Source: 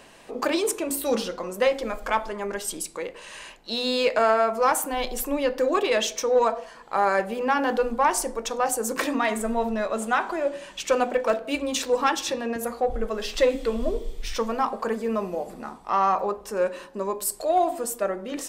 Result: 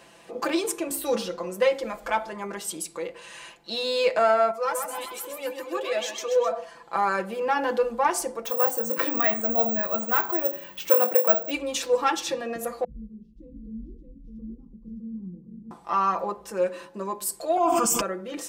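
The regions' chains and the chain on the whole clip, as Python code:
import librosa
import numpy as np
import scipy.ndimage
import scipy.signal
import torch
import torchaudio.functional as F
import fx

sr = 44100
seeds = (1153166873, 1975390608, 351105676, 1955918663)

y = fx.chain(x, sr, fx.highpass(hz=280.0, slope=6),
    fx.echo_feedback(ms=130, feedback_pct=53, wet_db=-6.5),
    fx.comb_cascade(direction='rising', hz=1.8), at=(4.51, 6.51))
y = fx.chain(y, sr, fx.lowpass(hz=3300.0, slope=6),
    fx.doubler(ms=26.0, db=-11.0),
    fx.resample_bad(factor=2, down='filtered', up='zero_stuff'), at=(8.45, 11.51))
y = fx.chain(y, sr, fx.cheby2_lowpass(hz=590.0, order=4, stop_db=50),
    fx.doubler(ms=22.0, db=-13.5),
    fx.echo_single(ms=612, db=-5.0), at=(12.84, 15.71))
y = fx.chain(y, sr, fx.fixed_phaser(hz=2700.0, stages=8),
    fx.dynamic_eq(hz=1200.0, q=0.83, threshold_db=-42.0, ratio=4.0, max_db=6),
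    fx.env_flatten(amount_pct=100), at=(17.57, 18.01))
y = scipy.signal.sosfilt(scipy.signal.butter(4, 47.0, 'highpass', fs=sr, output='sos'), y)
y = y + 0.7 * np.pad(y, (int(5.9 * sr / 1000.0), 0))[:len(y)]
y = F.gain(torch.from_numpy(y), -3.5).numpy()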